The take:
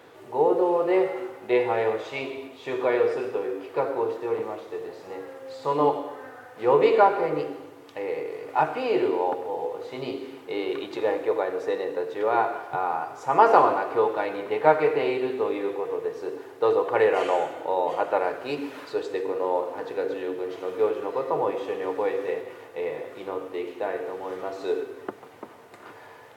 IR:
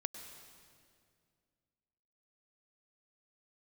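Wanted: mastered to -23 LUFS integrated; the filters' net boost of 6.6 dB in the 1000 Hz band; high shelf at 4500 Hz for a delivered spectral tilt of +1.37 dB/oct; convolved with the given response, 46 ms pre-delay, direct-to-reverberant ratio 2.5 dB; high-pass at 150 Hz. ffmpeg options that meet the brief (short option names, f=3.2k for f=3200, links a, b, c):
-filter_complex "[0:a]highpass=150,equalizer=f=1k:t=o:g=8,highshelf=f=4.5k:g=5,asplit=2[a][b];[1:a]atrim=start_sample=2205,adelay=46[c];[b][c]afir=irnorm=-1:irlink=0,volume=-1.5dB[d];[a][d]amix=inputs=2:normalize=0,volume=-2.5dB"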